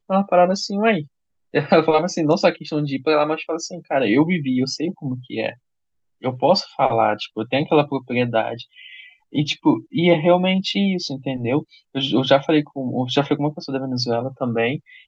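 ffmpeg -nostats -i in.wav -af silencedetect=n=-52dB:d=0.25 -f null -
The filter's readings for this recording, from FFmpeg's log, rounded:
silence_start: 1.08
silence_end: 1.53 | silence_duration: 0.46
silence_start: 5.58
silence_end: 6.21 | silence_duration: 0.63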